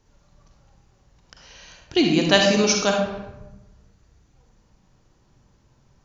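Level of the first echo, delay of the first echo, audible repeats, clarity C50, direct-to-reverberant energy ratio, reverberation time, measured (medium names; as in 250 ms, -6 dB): no echo, no echo, no echo, 2.0 dB, 1.0 dB, 1.0 s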